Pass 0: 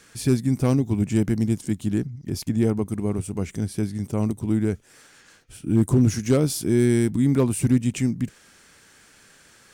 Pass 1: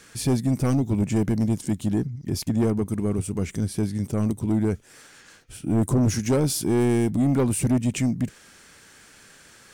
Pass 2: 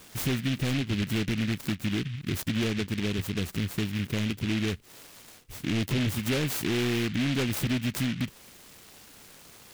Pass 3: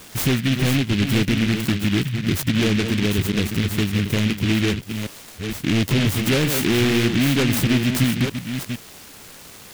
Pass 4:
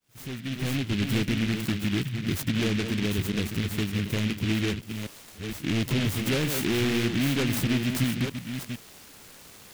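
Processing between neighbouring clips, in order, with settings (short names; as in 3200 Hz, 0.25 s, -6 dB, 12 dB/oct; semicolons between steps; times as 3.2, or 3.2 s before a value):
soft clip -18 dBFS, distortion -11 dB; gain +2.5 dB
compressor 3:1, threshold -27 dBFS, peak gain reduction 7 dB; noise-modulated delay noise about 2400 Hz, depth 0.22 ms
reverse delay 0.461 s, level -7 dB; gain +8.5 dB
opening faded in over 0.94 s; reverse echo 64 ms -18 dB; gain -7 dB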